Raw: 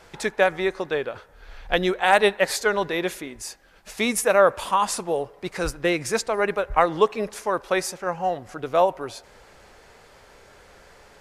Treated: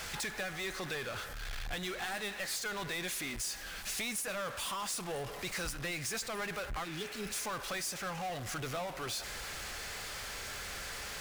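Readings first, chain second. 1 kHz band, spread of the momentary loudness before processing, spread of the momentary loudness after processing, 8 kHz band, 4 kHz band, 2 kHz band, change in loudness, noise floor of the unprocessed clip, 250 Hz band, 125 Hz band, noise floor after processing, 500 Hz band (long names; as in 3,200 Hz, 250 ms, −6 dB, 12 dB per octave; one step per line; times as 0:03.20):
−17.0 dB, 16 LU, 5 LU, −5.0 dB, −6.0 dB, −11.0 dB, −14.5 dB, −52 dBFS, −14.5 dB, −7.5 dB, −44 dBFS, −20.0 dB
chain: guitar amp tone stack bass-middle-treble 5-5-5
downward compressor, threshold −45 dBFS, peak gain reduction 18.5 dB
power curve on the samples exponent 0.35
notch filter 930 Hz, Q 14
healed spectral selection 0:06.87–0:07.31, 440–2,800 Hz after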